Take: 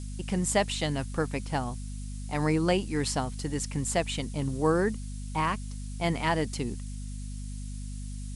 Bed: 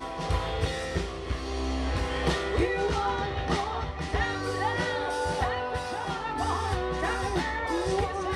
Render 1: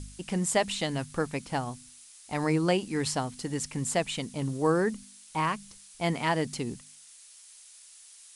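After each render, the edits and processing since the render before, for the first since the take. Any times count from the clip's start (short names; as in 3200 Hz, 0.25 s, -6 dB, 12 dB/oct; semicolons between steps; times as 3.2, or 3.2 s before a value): de-hum 50 Hz, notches 5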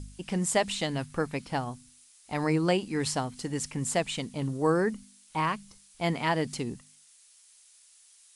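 noise print and reduce 6 dB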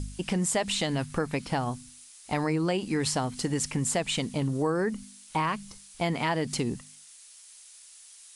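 in parallel at +2 dB: limiter -23 dBFS, peak gain reduction 10 dB; on the sum: compressor 3:1, threshold -25 dBFS, peak gain reduction 7 dB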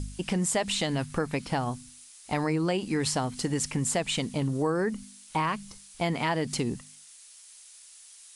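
nothing audible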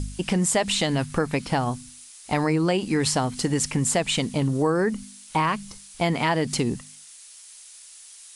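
gain +5 dB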